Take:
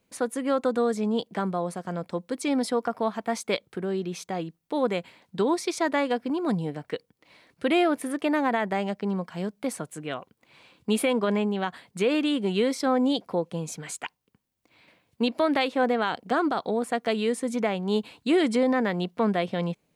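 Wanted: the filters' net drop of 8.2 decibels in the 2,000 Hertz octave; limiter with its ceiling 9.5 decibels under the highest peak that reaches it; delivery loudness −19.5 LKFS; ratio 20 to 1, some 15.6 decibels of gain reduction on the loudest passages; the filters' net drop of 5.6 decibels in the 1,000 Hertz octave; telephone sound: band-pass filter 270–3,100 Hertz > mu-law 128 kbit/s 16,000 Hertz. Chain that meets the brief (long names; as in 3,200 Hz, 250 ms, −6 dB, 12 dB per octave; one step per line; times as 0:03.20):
parametric band 1,000 Hz −6.5 dB
parametric band 2,000 Hz −7.5 dB
downward compressor 20 to 1, threshold −35 dBFS
brickwall limiter −34 dBFS
band-pass filter 270–3,100 Hz
level +26 dB
mu-law 128 kbit/s 16,000 Hz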